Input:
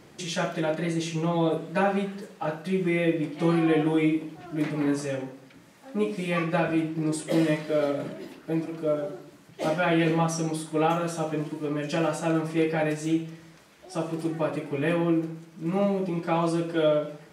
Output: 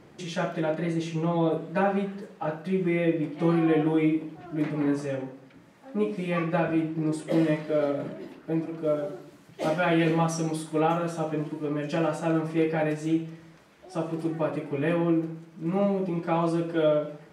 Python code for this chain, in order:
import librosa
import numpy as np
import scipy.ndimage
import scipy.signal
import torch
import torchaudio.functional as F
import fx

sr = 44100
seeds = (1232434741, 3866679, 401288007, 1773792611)

y = fx.high_shelf(x, sr, hz=3100.0, db=fx.steps((0.0, -10.0), (8.83, -2.5), (10.79, -8.0)))